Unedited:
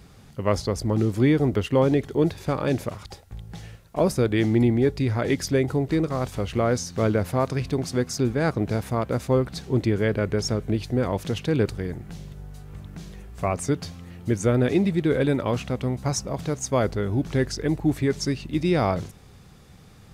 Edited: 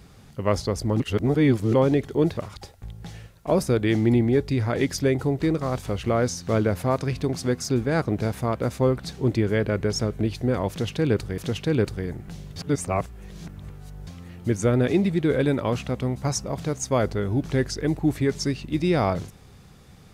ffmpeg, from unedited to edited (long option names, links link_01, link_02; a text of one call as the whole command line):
ffmpeg -i in.wav -filter_complex "[0:a]asplit=7[link_01][link_02][link_03][link_04][link_05][link_06][link_07];[link_01]atrim=end=1.002[link_08];[link_02]atrim=start=0.998:end=1.742,asetpts=PTS-STARTPTS,areverse[link_09];[link_03]atrim=start=1.738:end=2.372[link_10];[link_04]atrim=start=2.858:end=11.872[link_11];[link_05]atrim=start=11.188:end=12.372[link_12];[link_06]atrim=start=12.368:end=13.882,asetpts=PTS-STARTPTS,areverse[link_13];[link_07]atrim=start=13.878[link_14];[link_08][link_09]acrossfade=duration=0.004:curve1=hsin:curve2=hsin[link_15];[link_15][link_10]acrossfade=duration=0.004:curve1=hsin:curve2=hsin[link_16];[link_16][link_11]acrossfade=duration=0.004:curve1=hsin:curve2=hsin[link_17];[link_17][link_12]acrossfade=duration=0.004:curve1=hsin:curve2=hsin[link_18];[link_18][link_13]acrossfade=duration=0.004:curve1=hsin:curve2=hsin[link_19];[link_19][link_14]acrossfade=duration=0.004:curve1=hsin:curve2=hsin" out.wav